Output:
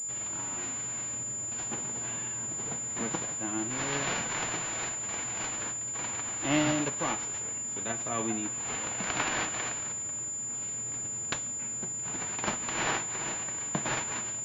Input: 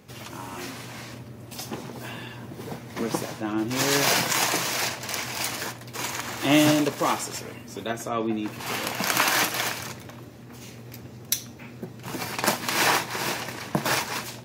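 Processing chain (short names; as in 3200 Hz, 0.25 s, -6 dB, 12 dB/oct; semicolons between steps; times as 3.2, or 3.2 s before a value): spectral whitening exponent 0.6; vocal rider within 3 dB 2 s; pulse-width modulation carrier 7100 Hz; gain -8 dB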